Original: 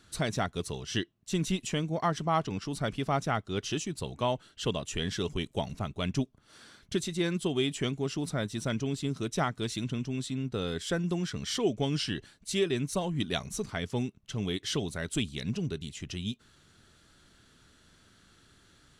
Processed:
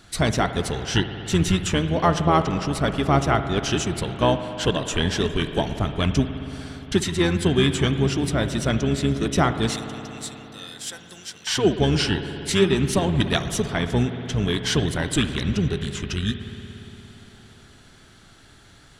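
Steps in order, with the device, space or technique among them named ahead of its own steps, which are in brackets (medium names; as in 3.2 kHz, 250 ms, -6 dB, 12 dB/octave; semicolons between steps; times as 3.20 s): octave pedal (harmony voices -12 st -6 dB); 9.76–11.47 s: differentiator; spring tank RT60 3.9 s, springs 58 ms, chirp 60 ms, DRR 8.5 dB; trim +8.5 dB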